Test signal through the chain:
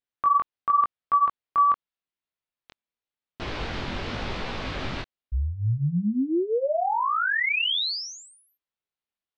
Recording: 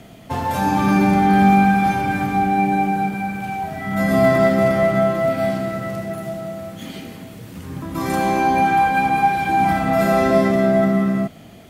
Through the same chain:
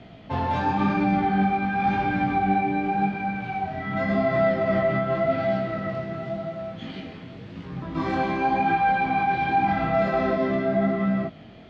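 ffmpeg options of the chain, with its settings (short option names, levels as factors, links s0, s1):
-af "lowpass=f=4200:w=0.5412,lowpass=f=4200:w=1.3066,alimiter=limit=0.251:level=0:latency=1:release=34,flanger=delay=16.5:depth=7.2:speed=0.9"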